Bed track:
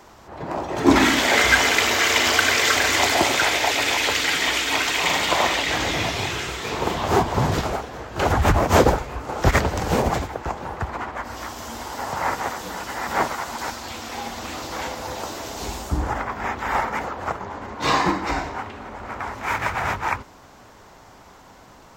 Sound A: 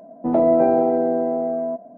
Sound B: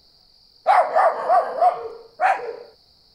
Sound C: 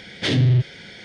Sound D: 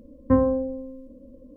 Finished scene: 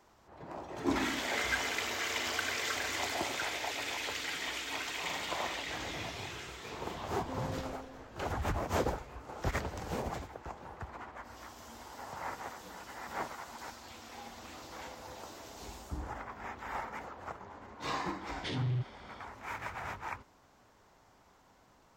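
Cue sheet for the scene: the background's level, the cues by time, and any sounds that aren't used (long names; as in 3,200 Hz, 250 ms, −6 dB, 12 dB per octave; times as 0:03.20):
bed track −16.5 dB
0:06.99: mix in D −14.5 dB + downward compressor, threshold −25 dBFS
0:18.21: mix in C −16.5 dB
not used: A, B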